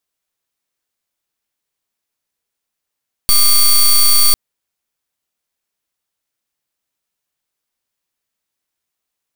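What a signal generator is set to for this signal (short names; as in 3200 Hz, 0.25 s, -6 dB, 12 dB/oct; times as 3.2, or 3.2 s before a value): pulse 4530 Hz, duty 14% -9 dBFS 1.05 s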